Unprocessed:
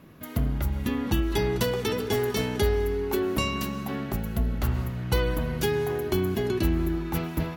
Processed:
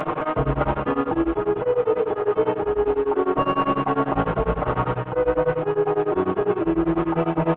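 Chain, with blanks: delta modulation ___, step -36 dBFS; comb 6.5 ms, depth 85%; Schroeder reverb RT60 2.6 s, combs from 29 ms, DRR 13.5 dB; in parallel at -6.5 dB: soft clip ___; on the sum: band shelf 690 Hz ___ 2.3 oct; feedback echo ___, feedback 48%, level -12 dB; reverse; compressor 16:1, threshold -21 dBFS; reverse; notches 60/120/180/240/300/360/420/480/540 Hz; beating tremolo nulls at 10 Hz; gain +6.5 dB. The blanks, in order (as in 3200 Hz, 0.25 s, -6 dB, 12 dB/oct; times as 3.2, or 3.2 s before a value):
16 kbps, -26.5 dBFS, +14.5 dB, 0.213 s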